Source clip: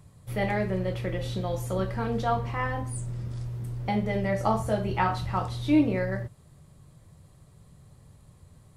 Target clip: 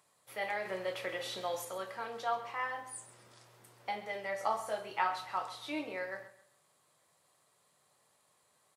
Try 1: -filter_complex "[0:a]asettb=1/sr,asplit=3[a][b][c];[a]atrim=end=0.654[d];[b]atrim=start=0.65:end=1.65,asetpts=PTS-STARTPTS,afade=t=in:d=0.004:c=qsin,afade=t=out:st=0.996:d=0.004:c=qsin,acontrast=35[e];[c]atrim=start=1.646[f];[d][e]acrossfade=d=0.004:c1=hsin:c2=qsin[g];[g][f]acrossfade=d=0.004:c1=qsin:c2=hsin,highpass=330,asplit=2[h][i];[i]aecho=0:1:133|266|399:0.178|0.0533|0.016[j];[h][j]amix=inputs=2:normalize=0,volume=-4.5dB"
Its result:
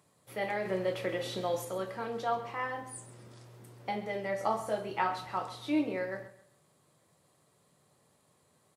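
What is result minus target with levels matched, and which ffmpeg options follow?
250 Hz band +7.5 dB
-filter_complex "[0:a]asettb=1/sr,asplit=3[a][b][c];[a]atrim=end=0.654[d];[b]atrim=start=0.65:end=1.65,asetpts=PTS-STARTPTS,afade=t=in:d=0.004:c=qsin,afade=t=out:st=0.996:d=0.004:c=qsin,acontrast=35[e];[c]atrim=start=1.646[f];[d][e]acrossfade=d=0.004:c1=hsin:c2=qsin[g];[g][f]acrossfade=d=0.004:c1=qsin:c2=hsin,highpass=700,asplit=2[h][i];[i]aecho=0:1:133|266|399:0.178|0.0533|0.016[j];[h][j]amix=inputs=2:normalize=0,volume=-4.5dB"

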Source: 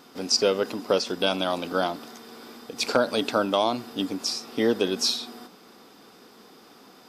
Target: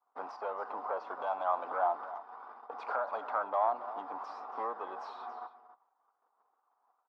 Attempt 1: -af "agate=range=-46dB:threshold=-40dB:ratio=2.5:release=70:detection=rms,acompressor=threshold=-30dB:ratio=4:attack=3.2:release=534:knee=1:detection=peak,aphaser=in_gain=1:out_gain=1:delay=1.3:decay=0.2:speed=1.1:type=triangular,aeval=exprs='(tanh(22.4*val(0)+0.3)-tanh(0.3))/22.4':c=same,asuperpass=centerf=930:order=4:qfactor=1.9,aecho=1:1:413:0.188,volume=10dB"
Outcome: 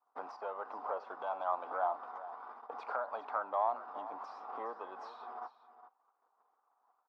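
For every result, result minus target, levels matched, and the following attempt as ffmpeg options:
echo 0.136 s late; compressor: peak gain reduction +5 dB
-af "agate=range=-46dB:threshold=-40dB:ratio=2.5:release=70:detection=rms,acompressor=threshold=-30dB:ratio=4:attack=3.2:release=534:knee=1:detection=peak,aphaser=in_gain=1:out_gain=1:delay=1.3:decay=0.2:speed=1.1:type=triangular,aeval=exprs='(tanh(22.4*val(0)+0.3)-tanh(0.3))/22.4':c=same,asuperpass=centerf=930:order=4:qfactor=1.9,aecho=1:1:277:0.188,volume=10dB"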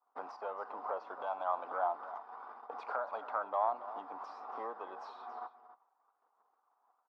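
compressor: peak gain reduction +5 dB
-af "agate=range=-46dB:threshold=-40dB:ratio=2.5:release=70:detection=rms,acompressor=threshold=-23.5dB:ratio=4:attack=3.2:release=534:knee=1:detection=peak,aphaser=in_gain=1:out_gain=1:delay=1.3:decay=0.2:speed=1.1:type=triangular,aeval=exprs='(tanh(22.4*val(0)+0.3)-tanh(0.3))/22.4':c=same,asuperpass=centerf=930:order=4:qfactor=1.9,aecho=1:1:277:0.188,volume=10dB"

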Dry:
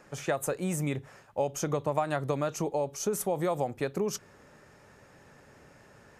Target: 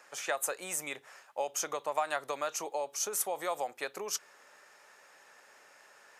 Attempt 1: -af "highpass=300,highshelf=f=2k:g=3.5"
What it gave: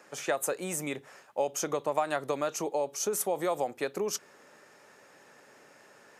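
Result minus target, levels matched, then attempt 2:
250 Hz band +9.5 dB
-af "highpass=730,highshelf=f=2k:g=3.5"

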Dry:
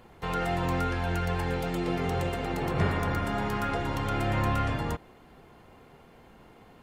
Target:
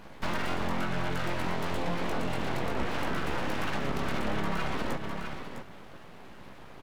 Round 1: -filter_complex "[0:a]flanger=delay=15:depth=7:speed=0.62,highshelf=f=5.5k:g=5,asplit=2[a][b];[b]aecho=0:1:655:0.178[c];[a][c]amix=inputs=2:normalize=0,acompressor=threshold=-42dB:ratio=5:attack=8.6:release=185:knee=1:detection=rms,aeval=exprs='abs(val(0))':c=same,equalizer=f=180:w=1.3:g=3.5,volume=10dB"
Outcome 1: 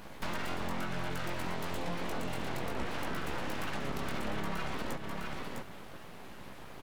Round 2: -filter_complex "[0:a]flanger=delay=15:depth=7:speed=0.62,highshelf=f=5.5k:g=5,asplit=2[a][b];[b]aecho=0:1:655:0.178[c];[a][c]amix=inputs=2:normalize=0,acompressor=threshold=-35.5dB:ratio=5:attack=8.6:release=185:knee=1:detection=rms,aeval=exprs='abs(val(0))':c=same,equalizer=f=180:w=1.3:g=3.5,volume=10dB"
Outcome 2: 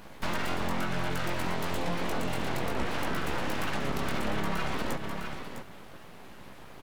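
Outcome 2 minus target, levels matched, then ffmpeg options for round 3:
8000 Hz band +4.0 dB
-filter_complex "[0:a]flanger=delay=15:depth=7:speed=0.62,highshelf=f=5.5k:g=-4.5,asplit=2[a][b];[b]aecho=0:1:655:0.178[c];[a][c]amix=inputs=2:normalize=0,acompressor=threshold=-35.5dB:ratio=5:attack=8.6:release=185:knee=1:detection=rms,aeval=exprs='abs(val(0))':c=same,equalizer=f=180:w=1.3:g=3.5,volume=10dB"

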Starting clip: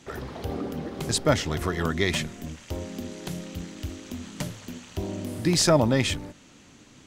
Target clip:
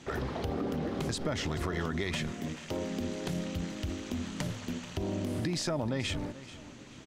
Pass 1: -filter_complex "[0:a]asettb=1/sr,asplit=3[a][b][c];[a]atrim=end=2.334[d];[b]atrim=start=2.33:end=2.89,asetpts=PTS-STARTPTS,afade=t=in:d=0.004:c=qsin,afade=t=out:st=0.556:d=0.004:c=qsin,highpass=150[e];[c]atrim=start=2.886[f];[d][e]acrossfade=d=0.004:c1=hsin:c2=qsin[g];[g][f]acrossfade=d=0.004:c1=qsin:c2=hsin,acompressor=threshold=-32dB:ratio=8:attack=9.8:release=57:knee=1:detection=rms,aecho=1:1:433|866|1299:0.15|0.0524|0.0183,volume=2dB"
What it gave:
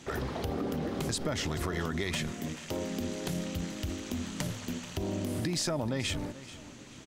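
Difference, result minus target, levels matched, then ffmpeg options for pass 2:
8000 Hz band +4.0 dB
-filter_complex "[0:a]asettb=1/sr,asplit=3[a][b][c];[a]atrim=end=2.334[d];[b]atrim=start=2.33:end=2.89,asetpts=PTS-STARTPTS,afade=t=in:d=0.004:c=qsin,afade=t=out:st=0.556:d=0.004:c=qsin,highpass=150[e];[c]atrim=start=2.886[f];[d][e]acrossfade=d=0.004:c1=hsin:c2=qsin[g];[g][f]acrossfade=d=0.004:c1=qsin:c2=hsin,acompressor=threshold=-32dB:ratio=8:attack=9.8:release=57:knee=1:detection=rms,highshelf=f=8.2k:g=-11,aecho=1:1:433|866|1299:0.15|0.0524|0.0183,volume=2dB"

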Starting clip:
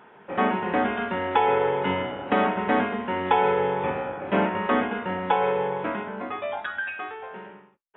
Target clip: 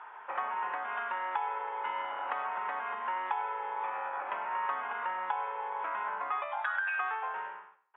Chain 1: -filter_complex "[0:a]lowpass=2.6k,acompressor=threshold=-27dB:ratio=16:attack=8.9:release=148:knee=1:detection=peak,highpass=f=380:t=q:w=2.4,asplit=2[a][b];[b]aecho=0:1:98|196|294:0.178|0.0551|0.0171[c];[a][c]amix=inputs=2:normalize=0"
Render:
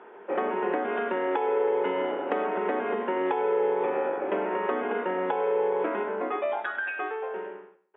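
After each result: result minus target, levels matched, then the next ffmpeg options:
500 Hz band +13.5 dB; compressor: peak gain reduction -5.5 dB
-filter_complex "[0:a]lowpass=2.6k,acompressor=threshold=-27dB:ratio=16:attack=8.9:release=148:knee=1:detection=peak,highpass=f=1k:t=q:w=2.4,asplit=2[a][b];[b]aecho=0:1:98|196|294:0.178|0.0551|0.0171[c];[a][c]amix=inputs=2:normalize=0"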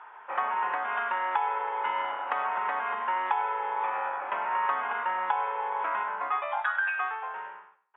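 compressor: peak gain reduction -5.5 dB
-filter_complex "[0:a]lowpass=2.6k,acompressor=threshold=-33dB:ratio=16:attack=8.9:release=148:knee=1:detection=peak,highpass=f=1k:t=q:w=2.4,asplit=2[a][b];[b]aecho=0:1:98|196|294:0.178|0.0551|0.0171[c];[a][c]amix=inputs=2:normalize=0"

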